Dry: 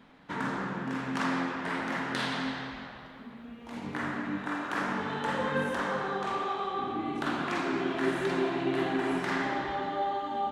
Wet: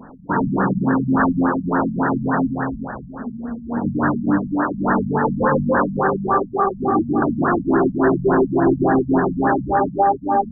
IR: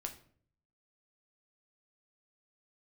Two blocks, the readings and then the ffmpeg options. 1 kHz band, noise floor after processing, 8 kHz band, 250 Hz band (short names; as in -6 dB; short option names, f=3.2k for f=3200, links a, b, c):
+12.5 dB, -36 dBFS, under -30 dB, +15.0 dB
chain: -af "apsyclip=26.5dB,afftfilt=real='re*lt(b*sr/1024,220*pow(1900/220,0.5+0.5*sin(2*PI*3.5*pts/sr)))':imag='im*lt(b*sr/1024,220*pow(1900/220,0.5+0.5*sin(2*PI*3.5*pts/sr)))':win_size=1024:overlap=0.75,volume=-9dB"